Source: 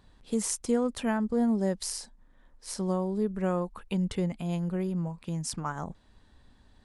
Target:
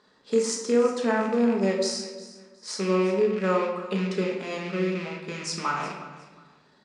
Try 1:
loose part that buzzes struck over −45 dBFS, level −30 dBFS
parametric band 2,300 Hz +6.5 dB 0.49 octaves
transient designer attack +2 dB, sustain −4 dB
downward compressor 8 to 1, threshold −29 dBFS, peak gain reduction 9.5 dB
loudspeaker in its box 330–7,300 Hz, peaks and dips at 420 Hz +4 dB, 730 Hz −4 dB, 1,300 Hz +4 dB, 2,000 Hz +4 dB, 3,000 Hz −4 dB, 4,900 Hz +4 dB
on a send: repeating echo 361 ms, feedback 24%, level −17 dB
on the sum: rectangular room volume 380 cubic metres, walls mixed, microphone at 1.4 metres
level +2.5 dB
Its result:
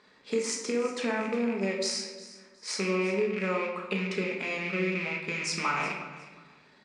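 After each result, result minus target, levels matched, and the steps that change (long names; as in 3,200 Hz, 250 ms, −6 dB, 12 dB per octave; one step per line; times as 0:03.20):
downward compressor: peak gain reduction +9.5 dB; 2,000 Hz band +6.5 dB
remove: downward compressor 8 to 1, threshold −29 dBFS, peak gain reduction 9.5 dB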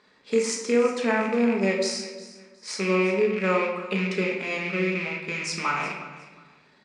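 2,000 Hz band +5.5 dB
change: parametric band 2,300 Hz −5 dB 0.49 octaves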